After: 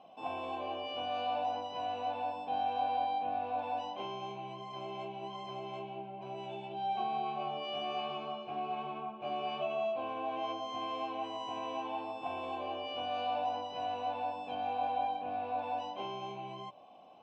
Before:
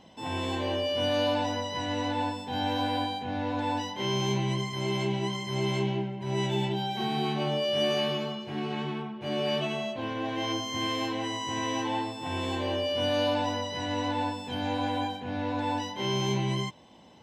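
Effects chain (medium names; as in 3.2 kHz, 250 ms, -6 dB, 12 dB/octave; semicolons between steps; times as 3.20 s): bass shelf 420 Hz +6.5 dB; de-hum 58.81 Hz, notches 17; compression, threshold -28 dBFS, peak gain reduction 8.5 dB; vowel filter a; trim +7.5 dB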